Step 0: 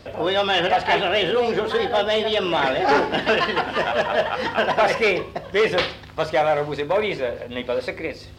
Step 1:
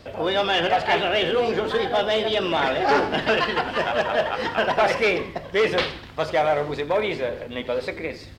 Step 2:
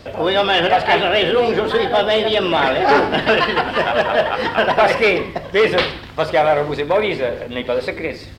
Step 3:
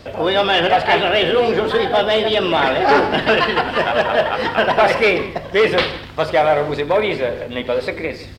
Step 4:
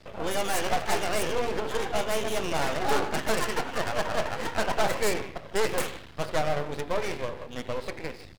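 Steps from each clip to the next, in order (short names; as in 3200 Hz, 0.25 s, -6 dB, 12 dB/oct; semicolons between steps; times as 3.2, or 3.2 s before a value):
frequency-shifting echo 86 ms, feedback 52%, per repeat -96 Hz, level -16 dB; gain -1.5 dB
dynamic EQ 6400 Hz, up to -7 dB, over -53 dBFS, Q 3.1; gain +6 dB
echo 0.157 s -17.5 dB
tracing distortion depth 0.24 ms; half-wave rectifier; gain -9 dB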